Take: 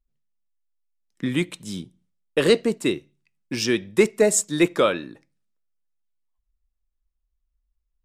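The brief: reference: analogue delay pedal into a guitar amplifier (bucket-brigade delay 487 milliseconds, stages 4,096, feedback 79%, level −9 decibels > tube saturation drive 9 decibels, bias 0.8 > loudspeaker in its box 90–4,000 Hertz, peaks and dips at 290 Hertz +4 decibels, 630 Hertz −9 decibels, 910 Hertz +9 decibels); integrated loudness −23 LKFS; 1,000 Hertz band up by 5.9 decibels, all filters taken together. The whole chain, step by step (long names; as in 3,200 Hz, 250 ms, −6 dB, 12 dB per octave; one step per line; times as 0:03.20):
parametric band 1,000 Hz +5 dB
bucket-brigade delay 487 ms, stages 4,096, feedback 79%, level −9 dB
tube saturation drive 9 dB, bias 0.8
loudspeaker in its box 90–4,000 Hz, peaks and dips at 290 Hz +4 dB, 630 Hz −9 dB, 910 Hz +9 dB
level +5 dB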